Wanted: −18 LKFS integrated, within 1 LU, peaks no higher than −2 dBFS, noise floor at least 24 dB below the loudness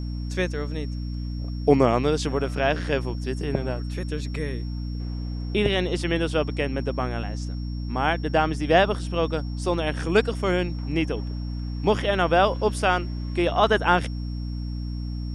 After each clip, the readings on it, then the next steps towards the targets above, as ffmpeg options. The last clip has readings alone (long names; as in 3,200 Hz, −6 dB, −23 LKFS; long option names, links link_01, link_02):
mains hum 60 Hz; hum harmonics up to 300 Hz; level of the hum −27 dBFS; interfering tone 5,500 Hz; level of the tone −48 dBFS; integrated loudness −25.0 LKFS; sample peak −4.5 dBFS; target loudness −18.0 LKFS
→ -af "bandreject=frequency=60:width_type=h:width=6,bandreject=frequency=120:width_type=h:width=6,bandreject=frequency=180:width_type=h:width=6,bandreject=frequency=240:width_type=h:width=6,bandreject=frequency=300:width_type=h:width=6"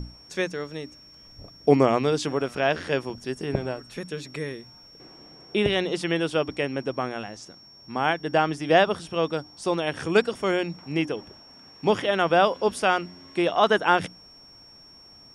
mains hum none found; interfering tone 5,500 Hz; level of the tone −48 dBFS
→ -af "bandreject=frequency=5500:width=30"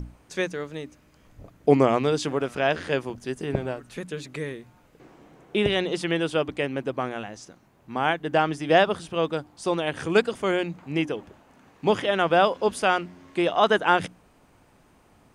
interfering tone none found; integrated loudness −25.0 LKFS; sample peak −4.5 dBFS; target loudness −18.0 LKFS
→ -af "volume=7dB,alimiter=limit=-2dB:level=0:latency=1"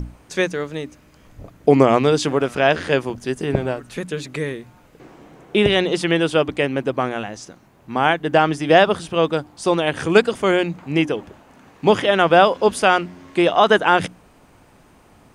integrated loudness −18.5 LKFS; sample peak −2.0 dBFS; background noise floor −52 dBFS